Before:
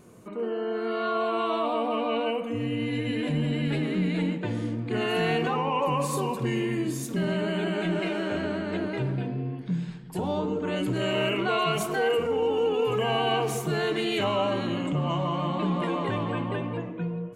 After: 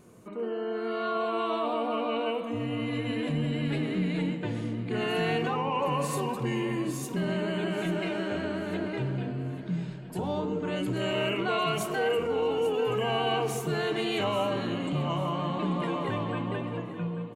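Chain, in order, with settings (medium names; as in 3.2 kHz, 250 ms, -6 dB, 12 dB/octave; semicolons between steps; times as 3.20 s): feedback delay 838 ms, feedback 37%, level -14 dB; trim -2.5 dB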